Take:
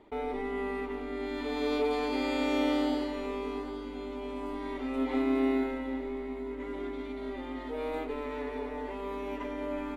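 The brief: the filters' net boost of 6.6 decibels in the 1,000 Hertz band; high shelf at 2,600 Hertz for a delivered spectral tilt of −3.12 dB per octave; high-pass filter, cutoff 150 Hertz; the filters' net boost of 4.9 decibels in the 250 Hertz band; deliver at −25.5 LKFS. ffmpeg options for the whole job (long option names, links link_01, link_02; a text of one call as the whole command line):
ffmpeg -i in.wav -af "highpass=150,equalizer=frequency=250:width_type=o:gain=5.5,equalizer=frequency=1000:width_type=o:gain=8.5,highshelf=frequency=2600:gain=-5,volume=4dB" out.wav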